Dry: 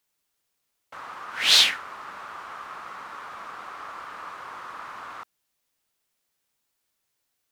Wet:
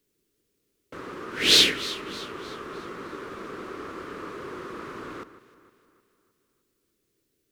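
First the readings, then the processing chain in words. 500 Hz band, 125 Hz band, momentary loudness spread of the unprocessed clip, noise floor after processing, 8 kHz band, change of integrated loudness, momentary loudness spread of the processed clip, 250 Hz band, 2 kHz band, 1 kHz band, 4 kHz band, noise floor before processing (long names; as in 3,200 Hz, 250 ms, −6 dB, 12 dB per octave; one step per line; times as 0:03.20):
+11.5 dB, can't be measured, 22 LU, −76 dBFS, 0.0 dB, −2.0 dB, 21 LU, +17.0 dB, −1.0 dB, −3.5 dB, 0.0 dB, −78 dBFS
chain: low shelf with overshoot 550 Hz +12 dB, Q 3
on a send: delay that swaps between a low-pass and a high-pass 154 ms, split 2,200 Hz, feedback 67%, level −13 dB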